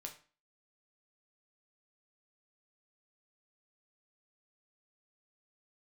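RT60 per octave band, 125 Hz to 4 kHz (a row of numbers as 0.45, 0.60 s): 0.40, 0.45, 0.40, 0.40, 0.40, 0.35 s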